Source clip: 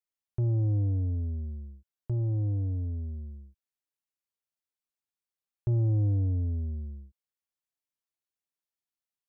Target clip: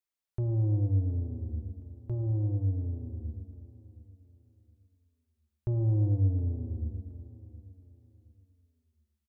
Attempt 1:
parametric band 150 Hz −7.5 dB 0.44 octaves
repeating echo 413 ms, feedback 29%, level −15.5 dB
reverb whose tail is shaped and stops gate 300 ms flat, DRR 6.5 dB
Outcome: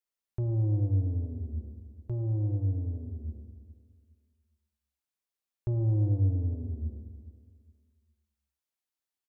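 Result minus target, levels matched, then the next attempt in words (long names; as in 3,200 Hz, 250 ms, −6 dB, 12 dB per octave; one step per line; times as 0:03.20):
echo 305 ms early
parametric band 150 Hz −7.5 dB 0.44 octaves
repeating echo 718 ms, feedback 29%, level −15.5 dB
reverb whose tail is shaped and stops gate 300 ms flat, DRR 6.5 dB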